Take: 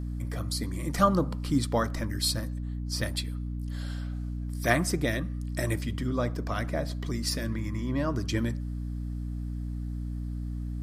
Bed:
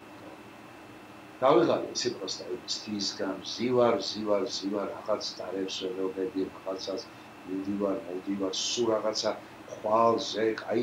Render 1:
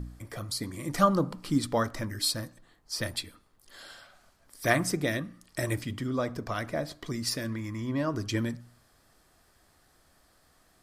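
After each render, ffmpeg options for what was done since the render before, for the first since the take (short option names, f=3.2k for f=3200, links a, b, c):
-af "bandreject=f=60:t=h:w=4,bandreject=f=120:t=h:w=4,bandreject=f=180:t=h:w=4,bandreject=f=240:t=h:w=4,bandreject=f=300:t=h:w=4"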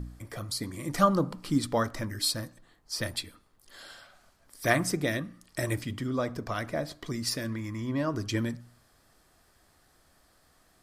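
-af anull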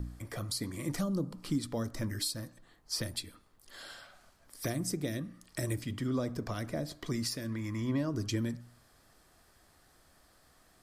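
-filter_complex "[0:a]acrossover=split=460|4100[a][b][c];[b]acompressor=threshold=-41dB:ratio=6[d];[a][d][c]amix=inputs=3:normalize=0,alimiter=limit=-22.5dB:level=0:latency=1:release=491"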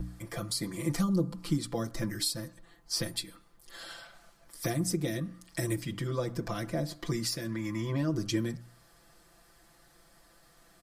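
-af "aecho=1:1:5.9:0.99"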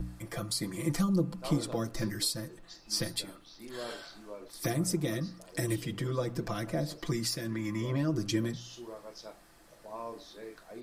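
-filter_complex "[1:a]volume=-18dB[a];[0:a][a]amix=inputs=2:normalize=0"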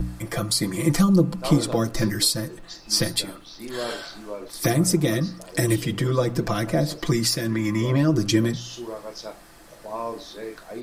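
-af "volume=10.5dB"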